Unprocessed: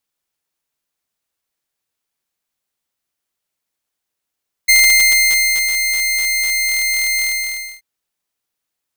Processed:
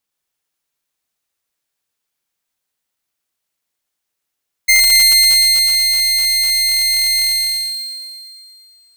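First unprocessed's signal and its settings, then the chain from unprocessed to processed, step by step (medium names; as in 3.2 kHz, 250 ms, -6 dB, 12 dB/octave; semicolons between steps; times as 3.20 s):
ADSR saw 2.1 kHz, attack 15 ms, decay 967 ms, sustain -8 dB, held 2.53 s, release 601 ms -4.5 dBFS
on a send: thinning echo 115 ms, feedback 67%, high-pass 890 Hz, level -4 dB; on the sum: decay stretcher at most 24 dB/s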